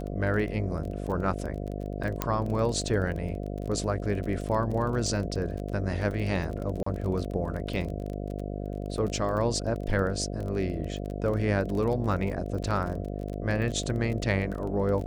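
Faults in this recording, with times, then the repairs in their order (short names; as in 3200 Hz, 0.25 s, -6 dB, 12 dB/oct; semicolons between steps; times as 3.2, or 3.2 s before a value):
buzz 50 Hz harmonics 14 -34 dBFS
crackle 26/s -33 dBFS
2.22 pop -11 dBFS
6.83–6.86 gap 34 ms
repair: de-click; de-hum 50 Hz, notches 14; interpolate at 6.83, 34 ms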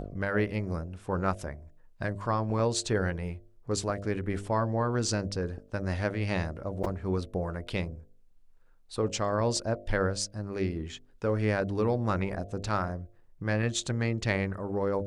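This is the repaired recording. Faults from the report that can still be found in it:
none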